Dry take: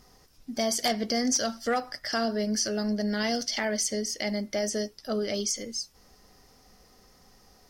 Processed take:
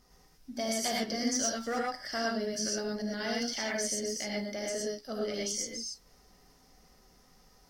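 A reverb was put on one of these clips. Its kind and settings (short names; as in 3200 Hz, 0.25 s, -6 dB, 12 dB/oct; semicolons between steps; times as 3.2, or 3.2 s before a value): non-linear reverb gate 0.14 s rising, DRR -2.5 dB; gain -8 dB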